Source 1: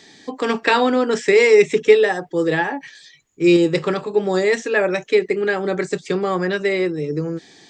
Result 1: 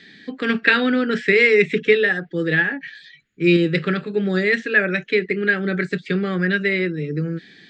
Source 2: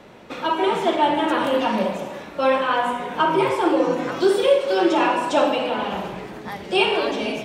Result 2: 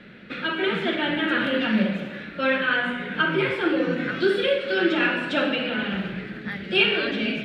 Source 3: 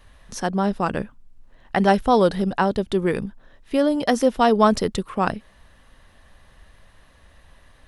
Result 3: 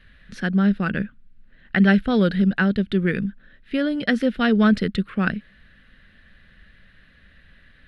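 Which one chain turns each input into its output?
EQ curve 110 Hz 0 dB, 200 Hz +8 dB, 290 Hz 0 dB, 530 Hz -4 dB, 980 Hz -15 dB, 1500 Hz +8 dB, 4200 Hz +1 dB, 6000 Hz -14 dB; gain -2 dB

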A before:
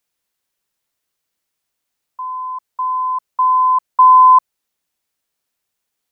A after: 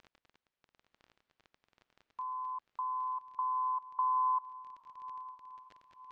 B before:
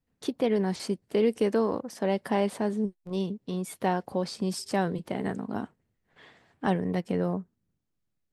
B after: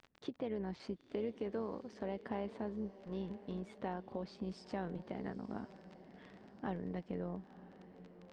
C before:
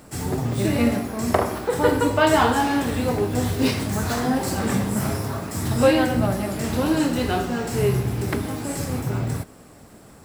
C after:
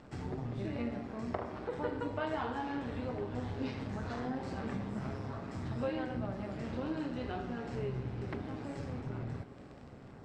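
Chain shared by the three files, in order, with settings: crackle 22/s -31 dBFS; high shelf 7400 Hz -11.5 dB; compressor 2:1, threshold -34 dBFS; air absorption 130 m; diffused feedback echo 0.965 s, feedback 43%, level -15 dB; AM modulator 130 Hz, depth 25%; gain -5.5 dB

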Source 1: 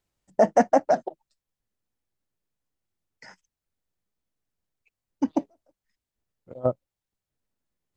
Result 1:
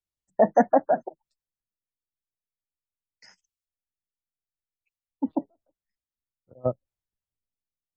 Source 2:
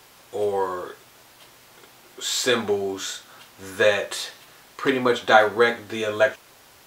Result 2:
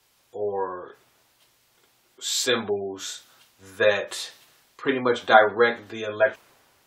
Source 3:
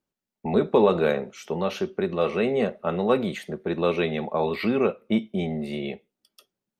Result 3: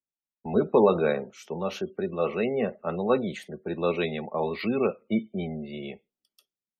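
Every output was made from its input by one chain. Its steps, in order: spectral gate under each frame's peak -30 dB strong; three-band expander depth 40%; gain -3 dB

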